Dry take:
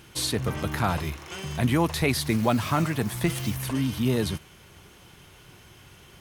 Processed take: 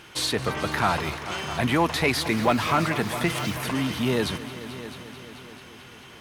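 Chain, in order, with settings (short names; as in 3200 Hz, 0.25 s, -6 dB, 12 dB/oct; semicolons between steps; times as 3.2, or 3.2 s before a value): multi-head echo 0.219 s, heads all three, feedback 56%, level -18 dB; overdrive pedal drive 13 dB, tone 3000 Hz, clips at -9.5 dBFS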